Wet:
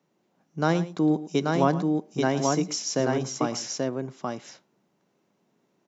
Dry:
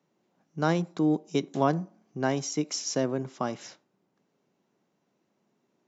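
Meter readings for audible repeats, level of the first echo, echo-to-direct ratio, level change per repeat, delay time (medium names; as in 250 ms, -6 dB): 2, -15.0 dB, -2.5 dB, no regular repeats, 110 ms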